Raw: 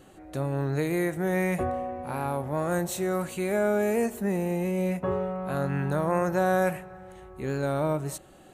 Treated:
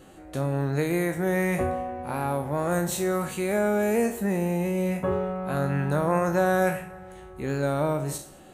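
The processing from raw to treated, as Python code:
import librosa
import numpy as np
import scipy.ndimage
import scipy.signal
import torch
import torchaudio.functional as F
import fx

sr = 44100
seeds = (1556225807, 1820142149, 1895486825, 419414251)

y = fx.spec_trails(x, sr, decay_s=0.33)
y = fx.rev_gated(y, sr, seeds[0], gate_ms=260, shape='falling', drr_db=12.0)
y = F.gain(torch.from_numpy(y), 1.5).numpy()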